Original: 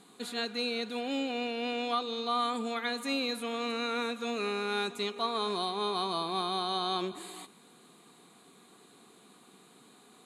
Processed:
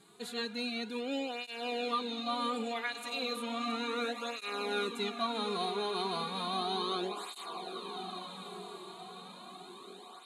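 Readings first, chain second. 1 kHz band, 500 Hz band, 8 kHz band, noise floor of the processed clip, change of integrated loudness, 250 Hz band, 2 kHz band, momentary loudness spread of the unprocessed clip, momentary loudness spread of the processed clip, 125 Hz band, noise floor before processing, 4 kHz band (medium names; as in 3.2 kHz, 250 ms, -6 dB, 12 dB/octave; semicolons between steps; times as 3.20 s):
-2.5 dB, -2.5 dB, -2.0 dB, -51 dBFS, -3.5 dB, -2.5 dB, -2.0 dB, 3 LU, 13 LU, -1.5 dB, -59 dBFS, -2.5 dB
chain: echo that smears into a reverb 1335 ms, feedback 50%, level -8 dB; cancelling through-zero flanger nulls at 0.34 Hz, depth 4.1 ms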